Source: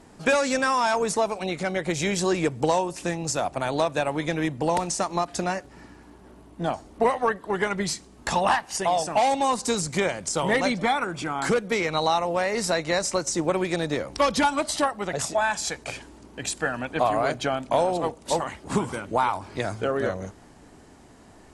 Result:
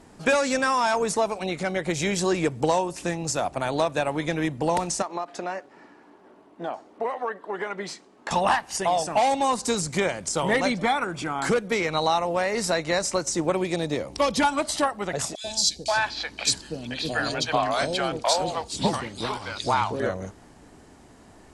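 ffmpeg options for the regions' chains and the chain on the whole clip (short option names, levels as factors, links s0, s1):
-filter_complex "[0:a]asettb=1/sr,asplit=3[s0][s1][s2];[s0]atrim=end=5.024[s3];[s1]atrim=start=5.02:end=8.31,asetpts=PTS-STARTPTS,afade=t=in:d=0.004:c=qsin,afade=t=out:st=3.286:d=0.004:c=qsin,highpass=340,aemphasis=mode=reproduction:type=75fm,acompressor=threshold=0.0398:ratio=2:attack=3.2:release=140:knee=1:detection=peak[s4];[s2]atrim=start=8.306[s5];[s3][s4]acrossfade=d=0.004:c1=hsin:c2=qsin[s6];[s6][s5]acrossfade=d=0.004:c1=qsin:c2=hsin,asettb=1/sr,asplit=3[s7][s8][s9];[s7]atrim=end=13.554[s10];[s8]atrim=start=13.55:end=14.4,asetpts=PTS-STARTPTS,afade=t=in:d=0.004:c=qsin,afade=t=out:st=0.846:d=0.004:c=qsin,highpass=42,equalizer=f=1500:t=o:w=0.69:g=-7[s11];[s9]atrim=start=14.396[s12];[s10][s11]acrossfade=d=0.004:c1=hsin:c2=qsin[s13];[s13][s12]acrossfade=d=0.004:c1=qsin:c2=hsin,asettb=1/sr,asplit=3[s14][s15][s16];[s14]atrim=end=15.354[s17];[s15]atrim=start=15.35:end=20,asetpts=PTS-STARTPTS,afade=t=in:d=0.004:c=qsin,afade=t=out:st=4.646:d=0.004:c=qsin,equalizer=f=4400:w=1.3:g=15,acrossover=split=500|3400[s18][s19][s20];[s18]adelay=90[s21];[s19]adelay=530[s22];[s21][s22][s20]amix=inputs=3:normalize=0,atrim=end_sample=205065[s23];[s16]atrim=start=19.996[s24];[s17][s23]acrossfade=d=0.004:c1=hsin:c2=qsin[s25];[s25][s24]acrossfade=d=0.004:c1=qsin:c2=hsin"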